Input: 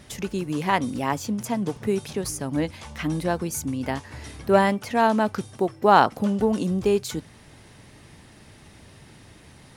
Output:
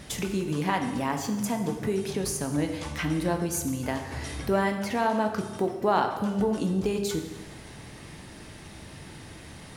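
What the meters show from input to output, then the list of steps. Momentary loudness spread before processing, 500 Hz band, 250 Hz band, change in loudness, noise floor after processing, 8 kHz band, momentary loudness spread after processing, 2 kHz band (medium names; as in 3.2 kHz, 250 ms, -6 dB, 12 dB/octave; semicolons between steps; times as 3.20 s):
12 LU, -4.5 dB, -2.5 dB, -4.0 dB, -45 dBFS, 0.0 dB, 18 LU, -4.0 dB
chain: de-hum 100.9 Hz, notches 37; compression 2:1, threshold -35 dBFS, peak gain reduction 13.5 dB; plate-style reverb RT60 1.2 s, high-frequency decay 0.95×, DRR 5 dB; trim +4 dB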